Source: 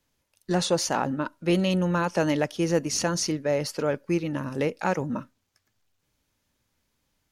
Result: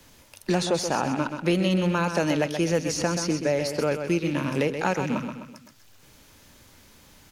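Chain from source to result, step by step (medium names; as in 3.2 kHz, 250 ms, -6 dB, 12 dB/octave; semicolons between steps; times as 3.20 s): rattle on loud lows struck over -35 dBFS, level -33 dBFS; feedback delay 128 ms, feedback 34%, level -9 dB; three bands compressed up and down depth 70%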